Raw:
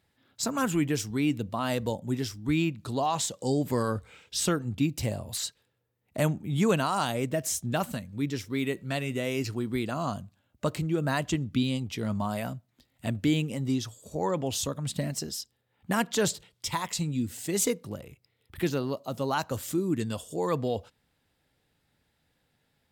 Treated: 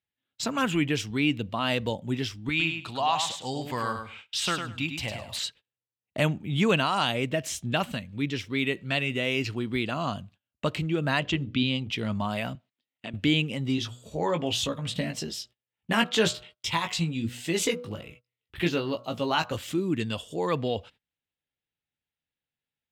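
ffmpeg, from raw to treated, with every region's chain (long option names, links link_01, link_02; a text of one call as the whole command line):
ffmpeg -i in.wav -filter_complex "[0:a]asettb=1/sr,asplit=3[link_01][link_02][link_03];[link_01]atrim=end=2.494[link_04];[link_02]atrim=start=2.49:end=5.39,asetpts=PTS-STARTPTS,afade=type=in:duration=0.004:curve=qsin,afade=type=out:start_time=2.896:duration=0.004:curve=qsin,lowshelf=frequency=610:width_type=q:width=1.5:gain=-7,aecho=1:1:103|206|309:0.447|0.0849|0.0161,atrim=end_sample=127890[link_05];[link_03]atrim=start=5.386[link_06];[link_04][link_05]acrossfade=duration=0.004:curve1=hsin:curve2=qsin[link_07];[link_07][link_06]acrossfade=duration=0.004:curve1=qsin:curve2=hsin,asettb=1/sr,asplit=3[link_08][link_09][link_10];[link_08]atrim=end=11.204[link_11];[link_09]atrim=start=11.2:end=11.91,asetpts=PTS-STARTPTS,afade=type=in:duration=0.004:curve=qsin,afade=type=out:start_time=0.706:duration=0.004:curve=qsin,lowpass=5800,bandreject=frequency=60:width_type=h:width=6,bandreject=frequency=120:width_type=h:width=6,bandreject=frequency=180:width_type=h:width=6,bandreject=frequency=240:width_type=h:width=6,bandreject=frequency=300:width_type=h:width=6,bandreject=frequency=360:width_type=h:width=6,bandreject=frequency=420:width_type=h:width=6,bandreject=frequency=480:width_type=h:width=6,bandreject=frequency=540:width_type=h:width=6,bandreject=frequency=600:width_type=h:width=6[link_12];[link_10]atrim=start=11.906[link_13];[link_11][link_12]acrossfade=duration=0.004:curve1=hsin:curve2=qsin[link_14];[link_14][link_13]acrossfade=duration=0.004:curve1=qsin:curve2=hsin,asettb=1/sr,asplit=3[link_15][link_16][link_17];[link_15]atrim=end=12.554[link_18];[link_16]atrim=start=12.55:end=13.14,asetpts=PTS-STARTPTS,afade=type=in:duration=0.004:curve=qsin,afade=type=out:start_time=0.586:duration=0.004:curve=qsin,acompressor=threshold=-33dB:ratio=4:attack=3.2:release=140:knee=1:detection=peak,highpass=210,lowpass=6700[link_19];[link_17]atrim=start=13.136[link_20];[link_18][link_19]acrossfade=duration=0.004:curve1=hsin:curve2=qsin[link_21];[link_21][link_20]acrossfade=duration=0.004:curve1=qsin:curve2=hsin,asettb=1/sr,asplit=3[link_22][link_23][link_24];[link_22]atrim=end=13.764[link_25];[link_23]atrim=start=13.76:end=19.57,asetpts=PTS-STARTPTS,afade=type=in:duration=0.004:curve=qsin,afade=type=out:start_time=5.806:duration=0.004:curve=qsin,asplit=2[link_26][link_27];[link_27]adelay=18,volume=-6dB[link_28];[link_26][link_28]amix=inputs=2:normalize=0,atrim=end_sample=256221,bandreject=frequency=122.1:width_type=h:width=4,bandreject=frequency=244.2:width_type=h:width=4,bandreject=frequency=366.3:width_type=h:width=4,bandreject=frequency=488.4:width_type=h:width=4,bandreject=frequency=610.5:width_type=h:width=4,bandreject=frequency=732.6:width_type=h:width=4,bandreject=frequency=854.7:width_type=h:width=4,bandreject=frequency=976.8:width_type=h:width=4,bandreject=frequency=1098.9:width_type=h:width=4,bandreject=frequency=1221:width_type=h:width=4,bandreject=frequency=1343.1:width_type=h:width=4,bandreject=frequency=1465.2:width_type=h:width=4,bandreject=frequency=1587.3:width_type=h:width=4[link_29];[link_24]atrim=start=19.566[link_30];[link_25][link_29]acrossfade=duration=0.004:curve1=hsin:curve2=qsin[link_31];[link_31][link_30]acrossfade=duration=0.004:curve1=qsin:curve2=hsin,aemphasis=mode=reproduction:type=cd,agate=range=-24dB:threshold=-52dB:ratio=16:detection=peak,equalizer=frequency=2900:width_type=o:width=1.2:gain=12" out.wav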